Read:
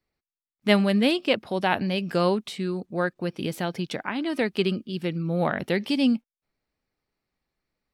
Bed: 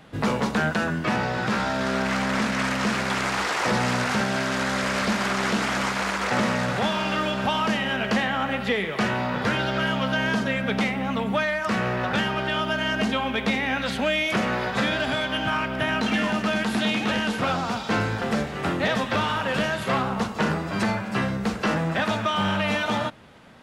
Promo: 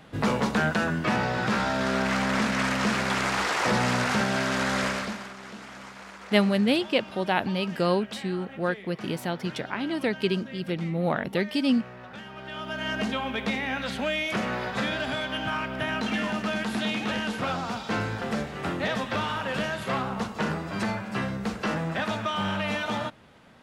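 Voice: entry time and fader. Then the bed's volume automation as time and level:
5.65 s, -1.5 dB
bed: 4.85 s -1 dB
5.35 s -18 dB
12.23 s -18 dB
12.9 s -4.5 dB

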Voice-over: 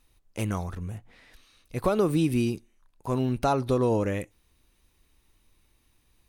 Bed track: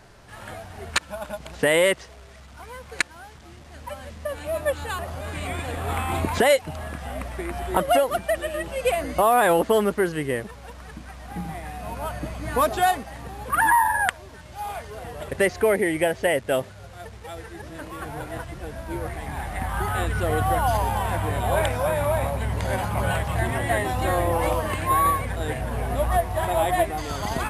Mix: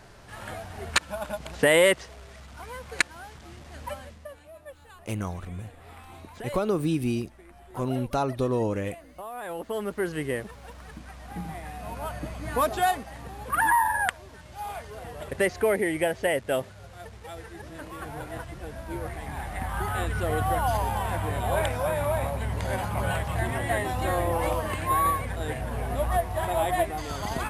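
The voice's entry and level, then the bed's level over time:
4.70 s, -2.0 dB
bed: 3.91 s 0 dB
4.53 s -20.5 dB
9.32 s -20.5 dB
10.15 s -3.5 dB

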